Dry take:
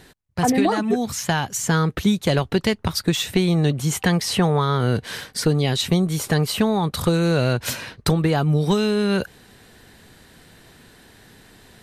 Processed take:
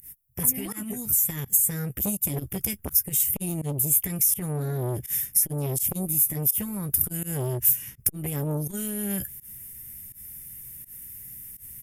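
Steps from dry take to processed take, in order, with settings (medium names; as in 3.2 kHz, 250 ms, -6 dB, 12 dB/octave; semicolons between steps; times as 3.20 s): Butterworth band-stop 4 kHz, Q 4.8; doubling 15 ms -10 dB; formant shift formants +2 st; FFT filter 120 Hz 0 dB, 680 Hz -26 dB, 2.8 kHz -4 dB, 5.7 kHz -19 dB, 12 kHz +14 dB; volume shaper 83 bpm, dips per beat 1, -23 dB, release 108 ms; resonant high shelf 4.4 kHz +8 dB, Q 3; compression 2.5:1, threshold -20 dBFS, peak gain reduction 9 dB; transformer saturation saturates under 2.1 kHz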